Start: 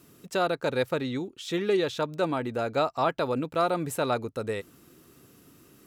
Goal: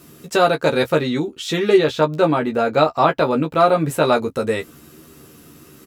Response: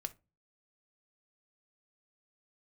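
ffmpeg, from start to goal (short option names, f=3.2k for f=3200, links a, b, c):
-filter_complex "[0:a]asettb=1/sr,asplit=3[a][b][c];[a]atrim=end=1.764[d];[b]atrim=start=1.76:end=4.03,asetpts=PTS-STARTPTS,afade=t=in:d=0.004:c=qsin,afade=t=out:st=2.266:d=0.004:c=qsin,equalizer=f=8.9k:w=0.5:g=-6[e];[c]atrim=start=4.026[f];[d][e]acrossfade=d=0.004:c1=hsin:c2=qsin[g];[g][f]acrossfade=d=0.004:c1=qsin:c2=hsin,aecho=1:1:13|28:0.668|0.178,volume=9dB"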